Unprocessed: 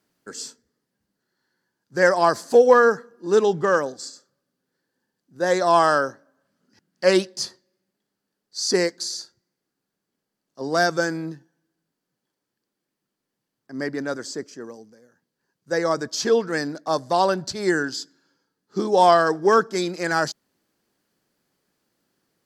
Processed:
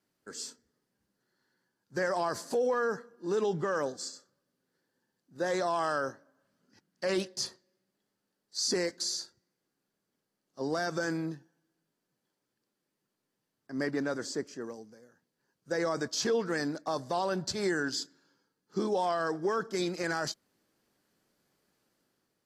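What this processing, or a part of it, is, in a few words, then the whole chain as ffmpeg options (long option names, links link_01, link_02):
low-bitrate web radio: -filter_complex "[0:a]asettb=1/sr,asplit=3[link_01][link_02][link_03];[link_01]atrim=end=13.914[link_04];[link_02]atrim=start=13.91:end=14.62,asetpts=PTS-STARTPTS,afade=type=in:duration=0.004:curve=qsin,afade=type=out:start_time=0.706:duration=0.004:curve=qsin,highshelf=frequency=2800:gain=-2.5[link_05];[link_03]atrim=start=14.616[link_06];[link_04][link_05]acrossfade=duration=0.004:curve1=hsin:curve2=qsin[link_07];[link_07][link_06]acrossfade=duration=0.004:curve1=qsin:curve2=hsin,dynaudnorm=framelen=150:gausssize=7:maxgain=5dB,alimiter=limit=-13.5dB:level=0:latency=1:release=40,volume=-8dB" -ar 32000 -c:a aac -b:a 48k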